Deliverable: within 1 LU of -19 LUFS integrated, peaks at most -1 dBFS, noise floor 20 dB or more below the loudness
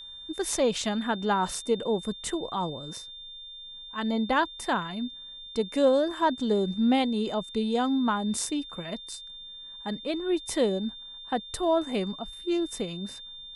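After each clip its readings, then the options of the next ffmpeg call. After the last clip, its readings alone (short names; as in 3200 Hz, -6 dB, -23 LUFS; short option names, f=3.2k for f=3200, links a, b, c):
steady tone 3600 Hz; tone level -41 dBFS; loudness -28.5 LUFS; peak -11.5 dBFS; loudness target -19.0 LUFS
-> -af "bandreject=f=3.6k:w=30"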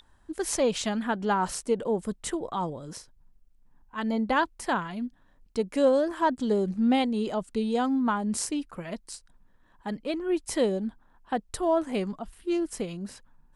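steady tone none; loudness -28.5 LUFS; peak -12.0 dBFS; loudness target -19.0 LUFS
-> -af "volume=9.5dB"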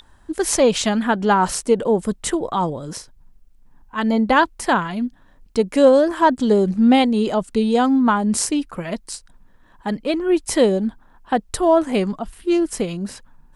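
loudness -19.0 LUFS; peak -2.5 dBFS; noise floor -52 dBFS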